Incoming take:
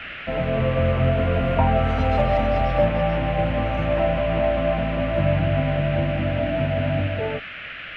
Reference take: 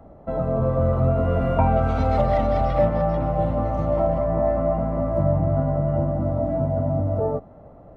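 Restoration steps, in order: noise print and reduce 9 dB; gain correction +3 dB, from 7.07 s

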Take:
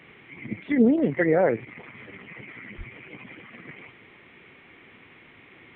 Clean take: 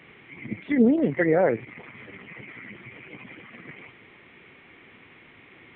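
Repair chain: 2.77–2.89 s: high-pass 140 Hz 24 dB/octave

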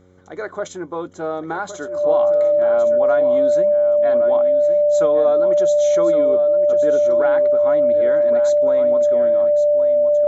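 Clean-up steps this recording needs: de-hum 91.5 Hz, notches 6; band-stop 590 Hz, Q 30; inverse comb 1116 ms -10.5 dB

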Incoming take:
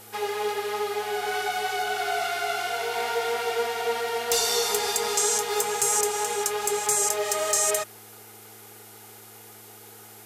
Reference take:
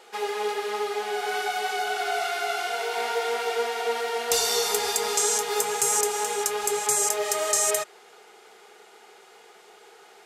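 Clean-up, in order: clip repair -14 dBFS; de-hum 108.8 Hz, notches 3; noise print and reduce 6 dB

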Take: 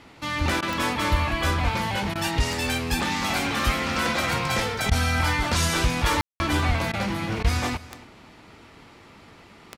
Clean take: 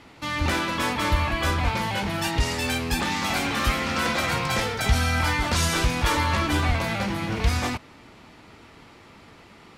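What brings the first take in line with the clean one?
de-click; room tone fill 6.21–6.40 s; interpolate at 0.61/2.14/4.90/6.92/7.43 s, 13 ms; inverse comb 279 ms -19 dB

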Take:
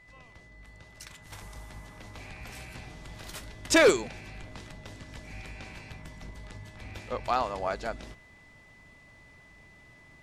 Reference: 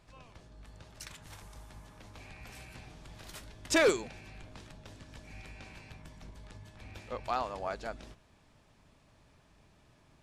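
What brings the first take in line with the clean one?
band-stop 2 kHz, Q 30; gain correction -5.5 dB, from 1.32 s

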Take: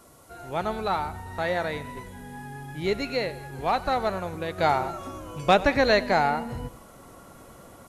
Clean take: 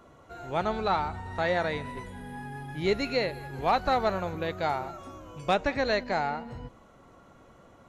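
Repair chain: noise print and reduce 7 dB; inverse comb 94 ms -19.5 dB; trim 0 dB, from 4.58 s -6.5 dB

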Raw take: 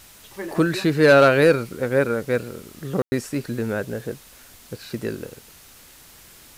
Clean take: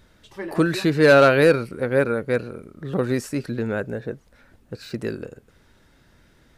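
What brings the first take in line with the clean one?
room tone fill 3.02–3.12 s; noise reduction 9 dB, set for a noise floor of -48 dBFS

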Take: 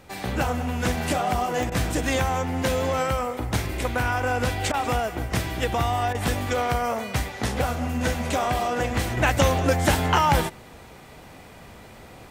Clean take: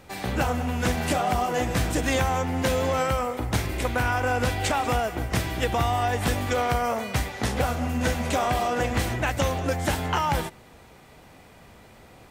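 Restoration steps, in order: de-click; interpolate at 1.70/4.72/6.13 s, 16 ms; gain correction -5 dB, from 9.17 s

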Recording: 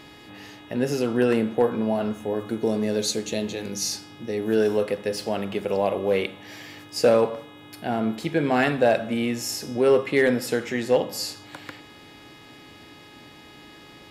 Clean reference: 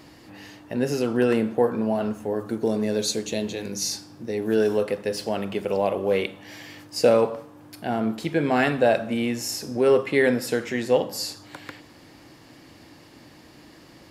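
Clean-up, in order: clip repair -10.5 dBFS; de-hum 418.4 Hz, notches 9

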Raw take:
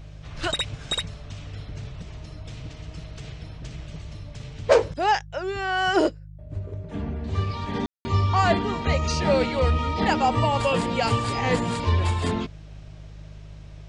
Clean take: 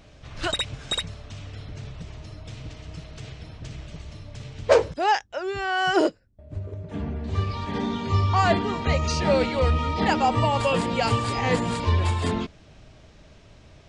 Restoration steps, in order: de-hum 51.3 Hz, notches 3; room tone fill 7.86–8.05 s

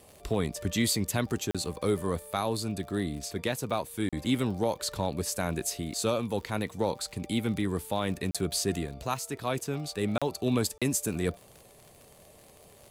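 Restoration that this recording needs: de-click; interpolate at 1.51/4.09/8.31/10.18/10.78 s, 36 ms

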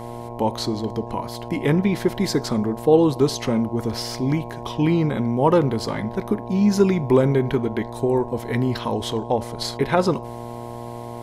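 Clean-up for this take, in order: de-hum 118.7 Hz, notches 9; band-stop 660 Hz, Q 30

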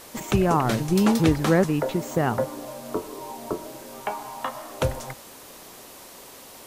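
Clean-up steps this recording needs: noise print and reduce 24 dB

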